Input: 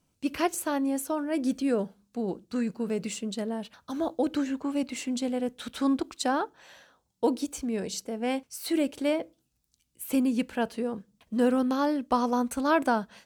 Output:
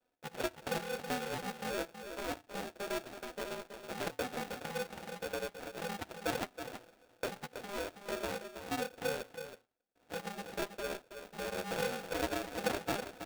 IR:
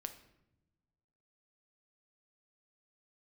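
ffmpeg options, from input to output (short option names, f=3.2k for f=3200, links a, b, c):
-filter_complex "[0:a]alimiter=limit=-21.5dB:level=0:latency=1:release=193,acompressor=threshold=-31dB:ratio=2,highpass=f=370:t=q:w=0.5412,highpass=f=370:t=q:w=1.307,lowpass=f=2.2k:t=q:w=0.5176,lowpass=f=2.2k:t=q:w=0.7071,lowpass=f=2.2k:t=q:w=1.932,afreqshift=55,aresample=8000,acrusher=samples=13:mix=1:aa=0.000001,aresample=44100,flanger=delay=4:depth=3:regen=33:speed=0.91:shape=sinusoidal,asplit=2[a][b];[b]aecho=0:1:324:0.355[c];[a][c]amix=inputs=2:normalize=0,aeval=exprs='val(0)*sgn(sin(2*PI*500*n/s))':c=same,volume=3dB"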